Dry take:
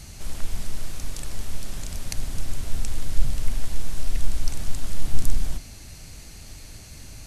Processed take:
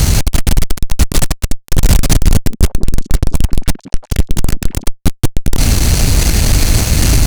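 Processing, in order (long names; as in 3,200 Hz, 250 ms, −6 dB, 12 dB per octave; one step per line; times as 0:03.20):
fuzz pedal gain 41 dB, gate −45 dBFS
low-shelf EQ 490 Hz +6.5 dB
0:02.32–0:04.85: echo through a band-pass that steps 174 ms, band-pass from 280 Hz, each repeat 1.4 octaves, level −10.5 dB
soft clipping −8 dBFS, distortion −14 dB
level +7 dB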